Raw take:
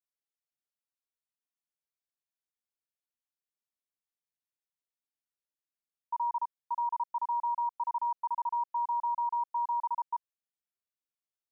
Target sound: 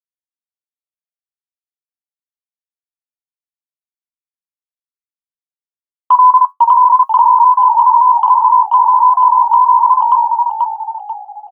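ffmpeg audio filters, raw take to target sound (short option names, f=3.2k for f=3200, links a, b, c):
-filter_complex "[0:a]afftdn=nr=14:nf=-54,aemphasis=mode=production:type=cd,agate=range=-49dB:threshold=-39dB:ratio=16:detection=peak,adynamicequalizer=threshold=0.00631:dfrequency=920:dqfactor=0.82:tfrequency=920:tqfactor=0.82:attack=5:release=100:ratio=0.375:range=3:mode=cutabove:tftype=bell,flanger=delay=8.6:depth=4.6:regen=55:speed=0.56:shape=triangular,asplit=6[a][b][c][d][e][f];[b]adelay=486,afreqshift=-55,volume=-4dB[g];[c]adelay=972,afreqshift=-110,volume=-12.4dB[h];[d]adelay=1458,afreqshift=-165,volume=-20.8dB[i];[e]adelay=1944,afreqshift=-220,volume=-29.2dB[j];[f]adelay=2430,afreqshift=-275,volume=-37.6dB[k];[a][g][h][i][j][k]amix=inputs=6:normalize=0,asetrate=46722,aresample=44100,atempo=0.943874,acontrast=80,alimiter=level_in=26.5dB:limit=-1dB:release=50:level=0:latency=1,volume=-1dB"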